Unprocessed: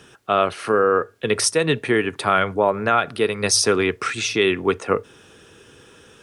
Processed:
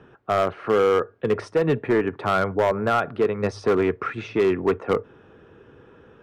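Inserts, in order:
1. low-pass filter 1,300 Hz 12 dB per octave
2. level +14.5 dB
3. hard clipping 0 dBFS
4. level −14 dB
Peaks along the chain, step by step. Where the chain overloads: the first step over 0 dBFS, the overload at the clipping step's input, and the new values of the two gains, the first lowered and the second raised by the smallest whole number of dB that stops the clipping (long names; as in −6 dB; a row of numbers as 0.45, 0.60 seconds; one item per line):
−5.5, +9.0, 0.0, −14.0 dBFS
step 2, 9.0 dB
step 2 +5.5 dB, step 4 −5 dB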